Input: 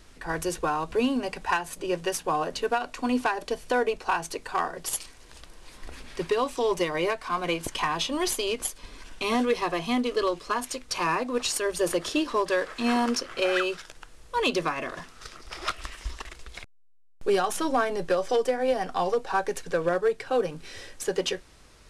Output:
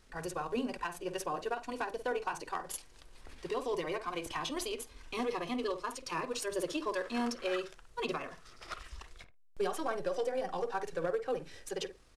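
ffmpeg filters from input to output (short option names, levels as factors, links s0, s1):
-filter_complex "[0:a]asplit=2[s0][s1];[s1]adelay=92,lowpass=f=1200:p=1,volume=0.398,asplit=2[s2][s3];[s3]adelay=92,lowpass=f=1200:p=1,volume=0.21,asplit=2[s4][s5];[s5]adelay=92,lowpass=f=1200:p=1,volume=0.21[s6];[s0][s2][s4][s6]amix=inputs=4:normalize=0,atempo=1.8,flanger=delay=1.5:depth=1.2:regen=-80:speed=0.12:shape=triangular,volume=0.562"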